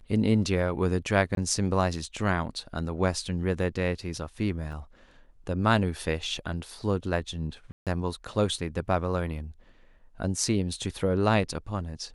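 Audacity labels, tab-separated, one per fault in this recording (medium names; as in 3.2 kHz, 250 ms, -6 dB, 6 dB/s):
1.350000	1.370000	dropout 22 ms
4.720000	4.730000	dropout 5.4 ms
7.720000	7.870000	dropout 147 ms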